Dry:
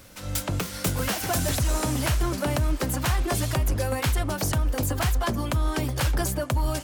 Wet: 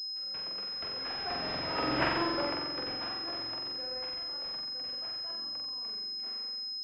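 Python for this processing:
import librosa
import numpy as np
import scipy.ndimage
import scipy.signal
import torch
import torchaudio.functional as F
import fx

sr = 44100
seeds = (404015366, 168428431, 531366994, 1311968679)

p1 = fx.tape_stop_end(x, sr, length_s=1.37)
p2 = fx.doppler_pass(p1, sr, speed_mps=9, closest_m=1.8, pass_at_s=2.04)
p3 = scipy.signal.sosfilt(scipy.signal.butter(2, 400.0, 'highpass', fs=sr, output='sos'), p2)
p4 = fx.notch(p3, sr, hz=600.0, q=18.0)
p5 = p4 + fx.room_flutter(p4, sr, wall_m=7.7, rt60_s=1.0, dry=0)
p6 = fx.rev_spring(p5, sr, rt60_s=2.3, pass_ms=(45,), chirp_ms=55, drr_db=11.5)
y = fx.pwm(p6, sr, carrier_hz=5100.0)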